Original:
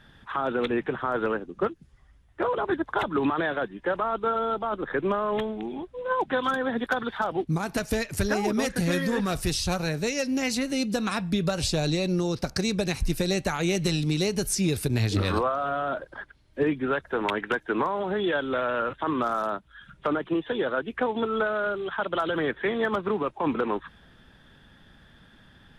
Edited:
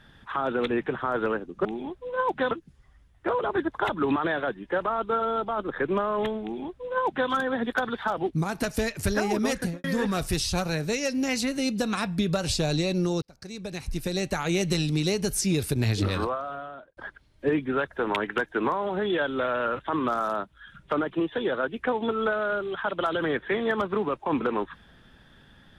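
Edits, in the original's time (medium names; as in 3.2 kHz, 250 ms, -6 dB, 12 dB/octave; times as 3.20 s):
5.57–6.43 s: copy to 1.65 s
8.72–8.98 s: studio fade out
12.36–13.64 s: fade in linear
15.09–16.11 s: fade out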